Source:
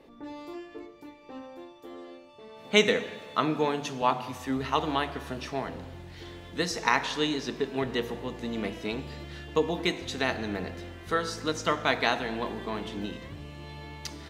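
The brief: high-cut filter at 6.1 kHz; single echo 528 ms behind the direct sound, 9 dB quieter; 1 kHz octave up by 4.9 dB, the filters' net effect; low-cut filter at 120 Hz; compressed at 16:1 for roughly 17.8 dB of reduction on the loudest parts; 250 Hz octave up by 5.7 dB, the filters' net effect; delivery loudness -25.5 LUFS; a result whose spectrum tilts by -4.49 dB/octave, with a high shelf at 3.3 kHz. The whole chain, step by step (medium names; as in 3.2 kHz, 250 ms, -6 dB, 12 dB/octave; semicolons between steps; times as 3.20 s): high-pass 120 Hz; low-pass 6.1 kHz; peaking EQ 250 Hz +7 dB; peaking EQ 1 kHz +5 dB; treble shelf 3.3 kHz +6 dB; compression 16:1, threshold -31 dBFS; delay 528 ms -9 dB; trim +11.5 dB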